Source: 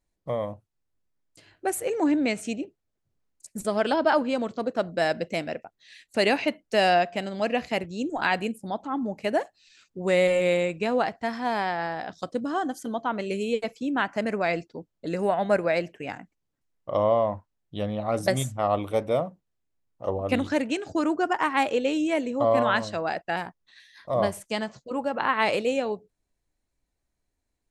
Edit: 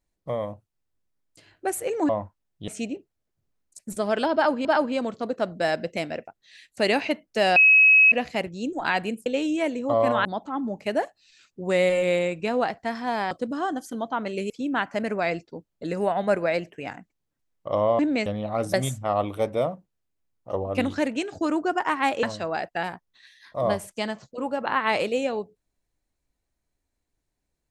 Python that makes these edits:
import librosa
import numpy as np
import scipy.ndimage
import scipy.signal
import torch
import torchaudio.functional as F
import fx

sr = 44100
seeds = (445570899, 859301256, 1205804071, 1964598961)

y = fx.edit(x, sr, fx.swap(start_s=2.09, length_s=0.27, other_s=17.21, other_length_s=0.59),
    fx.repeat(start_s=4.02, length_s=0.31, count=2),
    fx.bleep(start_s=6.93, length_s=0.56, hz=2560.0, db=-11.5),
    fx.cut(start_s=11.69, length_s=0.55),
    fx.cut(start_s=13.43, length_s=0.29),
    fx.move(start_s=21.77, length_s=0.99, to_s=8.63), tone=tone)